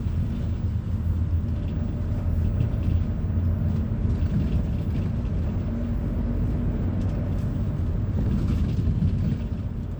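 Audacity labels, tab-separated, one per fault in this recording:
4.750000	8.320000	clipped -20 dBFS

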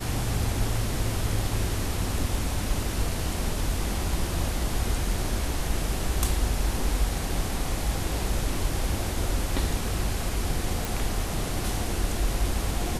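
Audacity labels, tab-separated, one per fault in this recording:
10.850000	10.850000	pop

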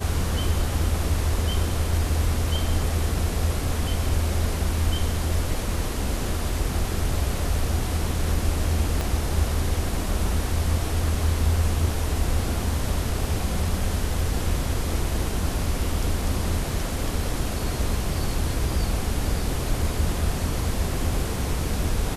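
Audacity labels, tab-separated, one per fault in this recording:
9.010000	9.010000	pop

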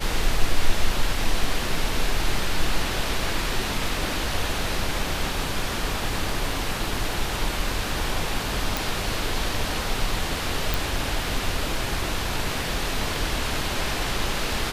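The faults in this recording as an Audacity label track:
8.770000	8.770000	pop
10.740000	10.740000	pop

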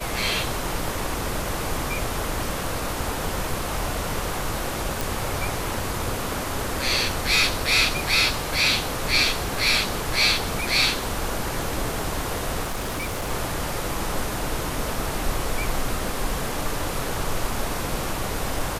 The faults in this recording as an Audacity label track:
5.010000	5.010000	pop
12.620000	13.310000	clipped -24 dBFS

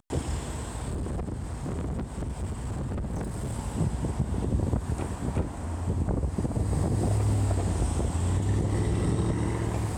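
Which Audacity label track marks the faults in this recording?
0.880000	3.540000	clipped -28.5 dBFS

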